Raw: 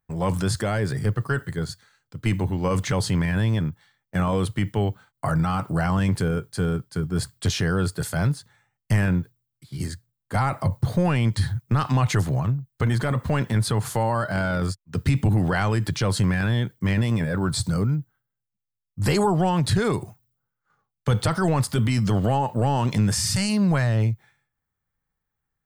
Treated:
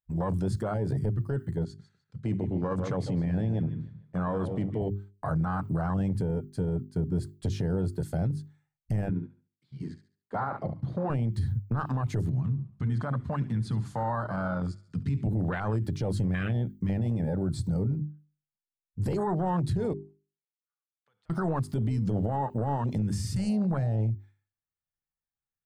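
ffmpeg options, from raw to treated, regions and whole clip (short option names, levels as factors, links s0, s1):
-filter_complex "[0:a]asettb=1/sr,asplit=3[s0][s1][s2];[s0]atrim=end=1.644[s3];[s1]atrim=start=1.64:end=4.82,asetpts=PTS-STARTPTS,afade=t=in:d=0.004:c=qsin,afade=t=out:st=3.176:d=0.004:c=qsin,highpass=110,lowpass=7700,asplit=2[s4][s5];[s5]adelay=151,lowpass=f=3600:p=1,volume=0.316,asplit=2[s6][s7];[s7]adelay=151,lowpass=f=3600:p=1,volume=0.41,asplit=2[s8][s9];[s9]adelay=151,lowpass=f=3600:p=1,volume=0.41,asplit=2[s10][s11];[s11]adelay=151,lowpass=f=3600:p=1,volume=0.41[s12];[s4][s6][s8][s10][s12]amix=inputs=5:normalize=0,atrim=end_sample=140238[s13];[s2]atrim=start=4.816[s14];[s3][s13]acrossfade=d=0.004:c1=hsin:c2=qsin[s15];[s15][s14]acrossfade=d=0.004:c1=qsin:c2=hsin,asettb=1/sr,asplit=3[s16][s17][s18];[s16]atrim=end=9.094[s19];[s17]atrim=start=9.09:end=11.1,asetpts=PTS-STARTPTS,afade=t=in:d=0.004:c=qsin,afade=t=out:st=2.006:d=0.004:c=qsin,highpass=200,lowpass=3900,aecho=1:1:70|140|210|280:0.316|0.108|0.0366|0.0124,atrim=end_sample=88641[s20];[s18]atrim=start=11.096[s21];[s19][s20]acrossfade=d=0.004:c1=hsin:c2=qsin[s22];[s22][s21]acrossfade=d=0.004:c1=qsin:c2=hsin,asettb=1/sr,asplit=3[s23][s24][s25];[s23]atrim=end=12.304[s26];[s24]atrim=start=12.3:end=15.27,asetpts=PTS-STARTPTS,afade=t=in:d=0.004:c=qsin,afade=t=out:st=2.966:d=0.004:c=qsin,highpass=120,lowpass=7000,equalizer=f=390:w=1.9:g=-10,aecho=1:1:70|140|210|280|350:0.158|0.0808|0.0412|0.021|0.0107,atrim=end_sample=130977[s27];[s25]atrim=start=15.266[s28];[s26][s27]acrossfade=d=0.004:c1=hsin:c2=qsin[s29];[s29][s28]acrossfade=d=0.004:c1=qsin:c2=hsin,asettb=1/sr,asplit=3[s30][s31][s32];[s30]atrim=end=19.934[s33];[s31]atrim=start=19.93:end=21.3,asetpts=PTS-STARTPTS,afade=t=in:d=0.004:c=qsin,afade=t=out:st=1.366:d=0.004:c=qsin,lowpass=1600,aderivative,acompressor=threshold=0.00178:ratio=3:attack=3.2:release=140:knee=1:detection=peak[s34];[s32]atrim=start=21.296[s35];[s33][s34]acrossfade=d=0.004:c1=hsin:c2=qsin[s36];[s36][s35]acrossfade=d=0.004:c1=qsin:c2=hsin,afwtdn=0.0562,bandreject=f=50:t=h:w=6,bandreject=f=100:t=h:w=6,bandreject=f=150:t=h:w=6,bandreject=f=200:t=h:w=6,bandreject=f=250:t=h:w=6,bandreject=f=300:t=h:w=6,bandreject=f=350:t=h:w=6,bandreject=f=400:t=h:w=6,alimiter=limit=0.0841:level=0:latency=1:release=80"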